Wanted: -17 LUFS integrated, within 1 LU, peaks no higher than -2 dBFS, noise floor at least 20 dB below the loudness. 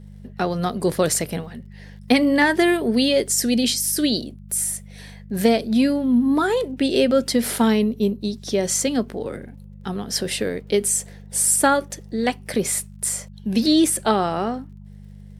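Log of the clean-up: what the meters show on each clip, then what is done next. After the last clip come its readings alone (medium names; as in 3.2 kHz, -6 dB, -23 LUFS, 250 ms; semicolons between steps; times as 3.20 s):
tick rate 37 per s; hum 50 Hz; highest harmonic 200 Hz; hum level -38 dBFS; loudness -20.5 LUFS; peak level -3.5 dBFS; loudness target -17.0 LUFS
-> de-click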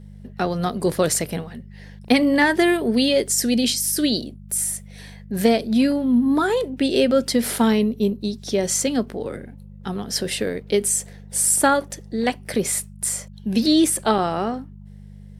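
tick rate 0.19 per s; hum 50 Hz; highest harmonic 200 Hz; hum level -38 dBFS
-> de-hum 50 Hz, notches 4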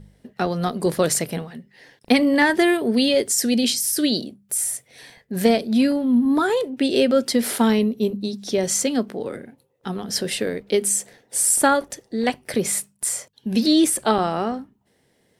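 hum not found; loudness -20.5 LUFS; peak level -3.5 dBFS; loudness target -17.0 LUFS
-> trim +3.5 dB; peak limiter -2 dBFS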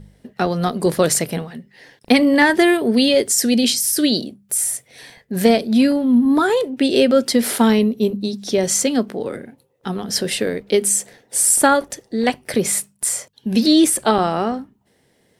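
loudness -17.0 LUFS; peak level -2.0 dBFS; noise floor -61 dBFS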